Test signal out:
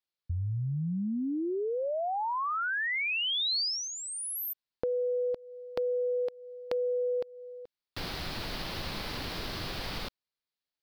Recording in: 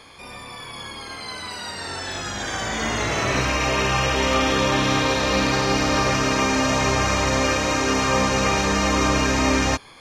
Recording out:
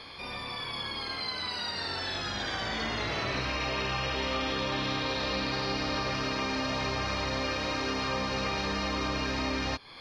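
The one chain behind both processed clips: resonant high shelf 5700 Hz -8 dB, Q 3; compressor 3:1, threshold -31 dBFS; gain -1 dB

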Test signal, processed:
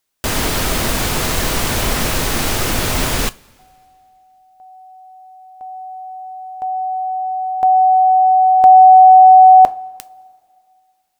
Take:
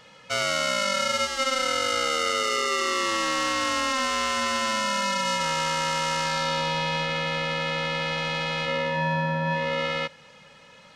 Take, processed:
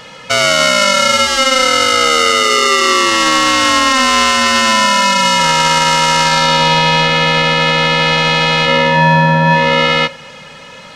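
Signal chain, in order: two-slope reverb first 0.21 s, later 2.2 s, from -22 dB, DRR 14.5 dB; maximiser +17.5 dB; gain -1 dB

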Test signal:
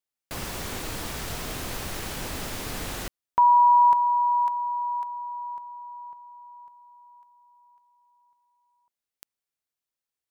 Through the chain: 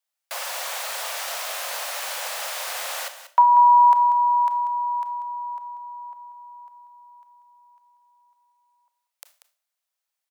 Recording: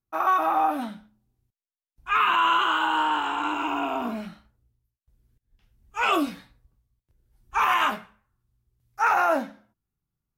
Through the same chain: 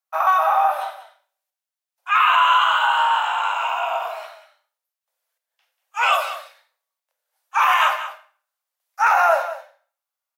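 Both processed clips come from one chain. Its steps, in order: steep high-pass 530 Hz 72 dB/oct; echo 0.189 s -12.5 dB; Schroeder reverb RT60 0.39 s, combs from 25 ms, DRR 10.5 dB; gain +5 dB

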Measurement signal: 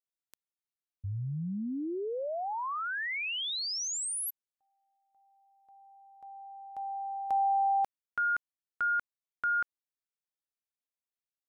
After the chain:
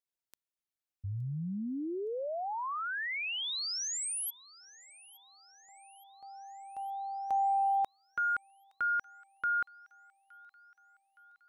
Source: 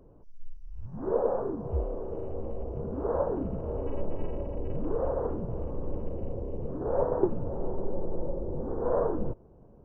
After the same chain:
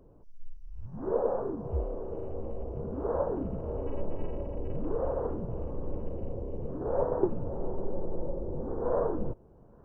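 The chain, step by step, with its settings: thin delay 0.867 s, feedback 59%, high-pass 1600 Hz, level -21 dB; gain -1.5 dB

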